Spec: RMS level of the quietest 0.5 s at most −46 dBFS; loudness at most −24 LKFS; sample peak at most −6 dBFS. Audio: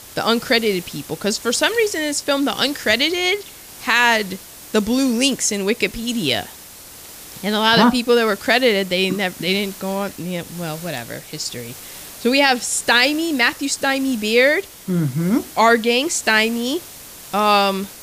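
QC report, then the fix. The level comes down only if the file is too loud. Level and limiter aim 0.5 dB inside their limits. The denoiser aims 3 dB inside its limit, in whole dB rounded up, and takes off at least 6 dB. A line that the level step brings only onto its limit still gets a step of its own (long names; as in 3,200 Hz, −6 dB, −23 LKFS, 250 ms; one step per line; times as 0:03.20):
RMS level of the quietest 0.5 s −40 dBFS: out of spec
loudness −18.0 LKFS: out of spec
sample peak −2.5 dBFS: out of spec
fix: level −6.5 dB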